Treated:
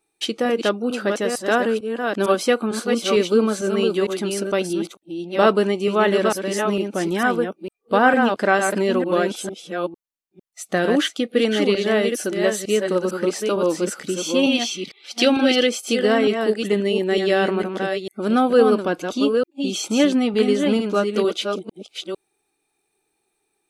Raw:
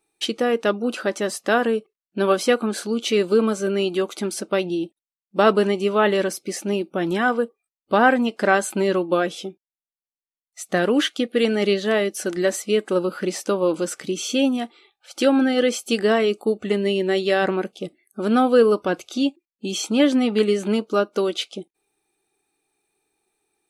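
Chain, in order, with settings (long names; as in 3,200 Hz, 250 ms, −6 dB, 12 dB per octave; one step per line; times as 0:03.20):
delay that plays each chunk backwards 452 ms, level −5 dB
0:14.43–0:15.67: flat-topped bell 3,500 Hz +8.5 dB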